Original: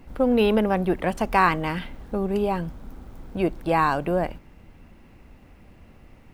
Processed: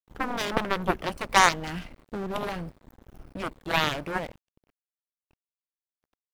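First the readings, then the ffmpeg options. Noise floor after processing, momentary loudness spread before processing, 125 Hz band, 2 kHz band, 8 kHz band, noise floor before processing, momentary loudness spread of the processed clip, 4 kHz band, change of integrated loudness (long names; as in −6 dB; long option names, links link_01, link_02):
below −85 dBFS, 12 LU, −7.0 dB, +1.0 dB, can't be measured, −51 dBFS, 19 LU, +6.0 dB, −3.5 dB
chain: -af "afftfilt=real='re*pow(10,7/40*sin(2*PI*(1*log(max(b,1)*sr/1024/100)/log(2)-(-1.4)*(pts-256)/sr)))':imag='im*pow(10,7/40*sin(2*PI*(1*log(max(b,1)*sr/1024/100)/log(2)-(-1.4)*(pts-256)/sr)))':win_size=1024:overlap=0.75,aeval=exprs='sgn(val(0))*max(abs(val(0))-0.0126,0)':channel_layout=same,aeval=exprs='0.562*(cos(1*acos(clip(val(0)/0.562,-1,1)))-cos(1*PI/2))+0.141*(cos(7*acos(clip(val(0)/0.562,-1,1)))-cos(7*PI/2))':channel_layout=same"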